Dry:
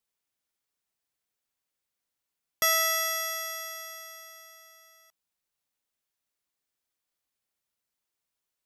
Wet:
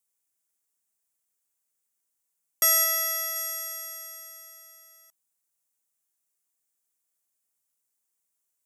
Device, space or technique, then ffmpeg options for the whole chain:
budget condenser microphone: -filter_complex "[0:a]asettb=1/sr,asplit=3[a][b][c];[a]atrim=end=2.844[d];[b]atrim=start=2.84:end=3.36,asetpts=PTS-STARTPTS,afade=t=in:d=0.004:c=qsin,afade=t=out:st=0.516:d=0.004:c=qsin,equalizer=f=8.3k:t=o:w=0.74:g=-5.5[e];[c]atrim=start=3.356[f];[d][e]acrossfade=d=0.004:c1=hsin:c2=qsin[g];[g][f]acrossfade=d=0.004:c1=qsin:c2=hsin,highpass=94,highshelf=f=5.7k:t=q:w=1.5:g=9.5,volume=-3dB"

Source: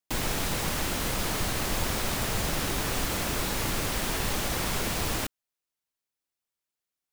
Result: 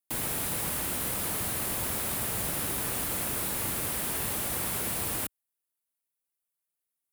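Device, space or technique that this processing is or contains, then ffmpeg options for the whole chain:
budget condenser microphone: -af "highpass=66,highshelf=f=7.9k:t=q:w=1.5:g=8.5,volume=-5dB"

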